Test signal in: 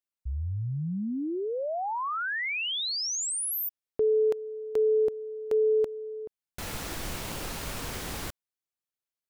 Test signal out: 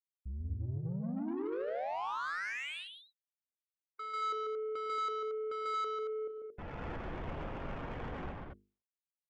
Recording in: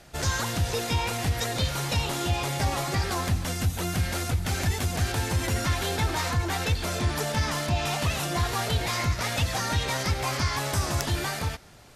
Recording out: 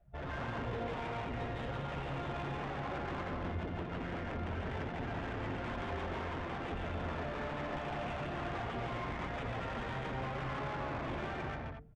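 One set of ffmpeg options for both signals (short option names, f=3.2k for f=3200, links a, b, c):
-filter_complex "[0:a]aresample=8000,aeval=exprs='0.0422*(abs(mod(val(0)/0.0422+3,4)-2)-1)':c=same,aresample=44100,acrossover=split=370|1500[a][b][c];[a]acompressor=threshold=-40dB:ratio=1.5[d];[b]acompressor=threshold=-36dB:ratio=3[e];[c]acompressor=threshold=-38dB:ratio=6[f];[d][e][f]amix=inputs=3:normalize=0,afftdn=nr=23:nf=-41,bandreject=f=50:t=h:w=6,bandreject=f=100:t=h:w=6,bandreject=f=150:t=h:w=6,bandreject=f=200:t=h:w=6,bandreject=f=250:t=h:w=6,bandreject=f=300:t=h:w=6,bandreject=f=350:t=h:w=6,bandreject=f=400:t=h:w=6,bandreject=f=450:t=h:w=6,asoftclip=type=tanh:threshold=-37.5dB,asplit=2[g][h];[h]aecho=0:1:105|142.9|227.4:0.251|0.708|0.631[i];[g][i]amix=inputs=2:normalize=0,adynamicsmooth=sensitivity=4:basefreq=1.5k" -ar 48000 -c:a libopus -b:a 96k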